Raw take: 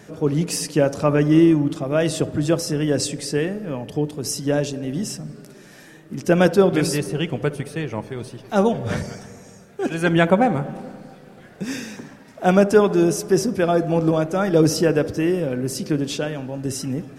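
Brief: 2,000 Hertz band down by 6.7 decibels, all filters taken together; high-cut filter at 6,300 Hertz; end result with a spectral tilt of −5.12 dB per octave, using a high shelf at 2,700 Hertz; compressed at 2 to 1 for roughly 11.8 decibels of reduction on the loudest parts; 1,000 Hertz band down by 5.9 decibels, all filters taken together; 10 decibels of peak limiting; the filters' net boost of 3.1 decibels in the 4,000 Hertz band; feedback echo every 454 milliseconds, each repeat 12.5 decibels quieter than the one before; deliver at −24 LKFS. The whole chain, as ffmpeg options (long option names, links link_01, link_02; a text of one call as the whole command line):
ffmpeg -i in.wav -af "lowpass=6300,equalizer=frequency=1000:width_type=o:gain=-8,equalizer=frequency=2000:width_type=o:gain=-9,highshelf=frequency=2700:gain=4.5,equalizer=frequency=4000:width_type=o:gain=4,acompressor=threshold=-33dB:ratio=2,alimiter=level_in=1dB:limit=-24dB:level=0:latency=1,volume=-1dB,aecho=1:1:454|908|1362:0.237|0.0569|0.0137,volume=10.5dB" out.wav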